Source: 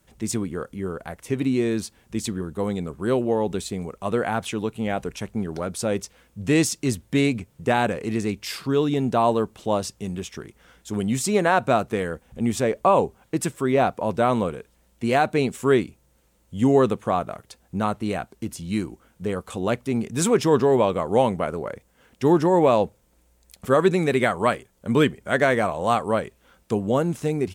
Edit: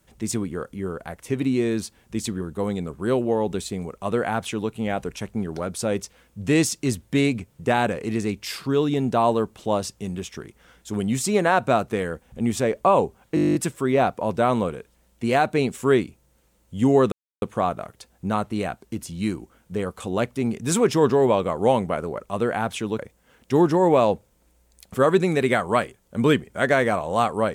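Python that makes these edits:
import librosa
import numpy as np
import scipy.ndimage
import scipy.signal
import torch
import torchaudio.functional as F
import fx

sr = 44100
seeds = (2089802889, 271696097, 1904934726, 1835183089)

y = fx.edit(x, sr, fx.duplicate(start_s=3.92, length_s=0.79, to_s=21.7),
    fx.stutter(start_s=13.35, slice_s=0.02, count=11),
    fx.insert_silence(at_s=16.92, length_s=0.3), tone=tone)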